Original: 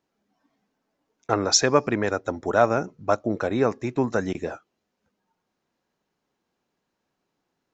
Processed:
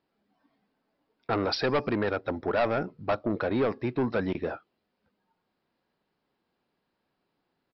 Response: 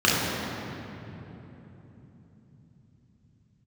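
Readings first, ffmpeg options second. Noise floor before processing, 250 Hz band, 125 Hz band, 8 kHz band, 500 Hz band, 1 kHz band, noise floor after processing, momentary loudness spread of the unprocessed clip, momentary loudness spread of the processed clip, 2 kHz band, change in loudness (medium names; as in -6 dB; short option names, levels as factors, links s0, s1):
-80 dBFS, -3.5 dB, -3.5 dB, no reading, -4.5 dB, -6.0 dB, -80 dBFS, 12 LU, 6 LU, -4.0 dB, -5.5 dB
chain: -af "asoftclip=type=tanh:threshold=0.1,aresample=11025,aresample=44100"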